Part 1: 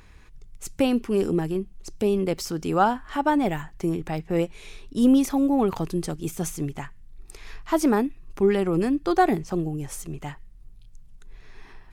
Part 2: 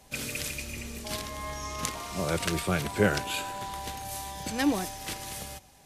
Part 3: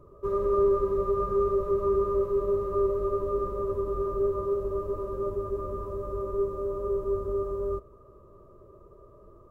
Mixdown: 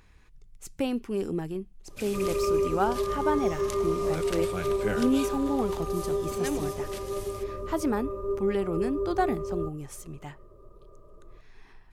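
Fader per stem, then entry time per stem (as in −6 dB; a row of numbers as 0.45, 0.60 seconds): −7.0, −7.0, −2.5 decibels; 0.00, 1.85, 1.90 seconds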